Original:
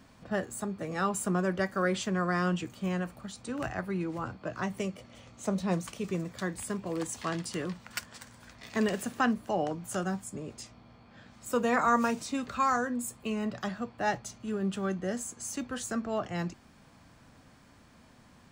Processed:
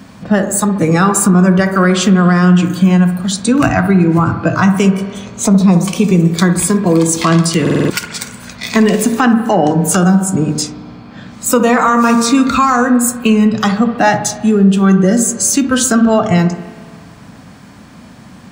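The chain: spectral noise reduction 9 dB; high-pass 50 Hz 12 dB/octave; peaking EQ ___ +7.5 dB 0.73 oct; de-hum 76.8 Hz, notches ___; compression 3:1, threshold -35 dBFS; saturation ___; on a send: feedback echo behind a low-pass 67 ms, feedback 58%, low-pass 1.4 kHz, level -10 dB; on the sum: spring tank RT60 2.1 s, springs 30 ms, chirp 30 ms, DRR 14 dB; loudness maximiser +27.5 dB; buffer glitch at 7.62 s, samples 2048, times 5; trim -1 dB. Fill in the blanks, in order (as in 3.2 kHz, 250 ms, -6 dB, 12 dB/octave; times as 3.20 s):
190 Hz, 8, -21.5 dBFS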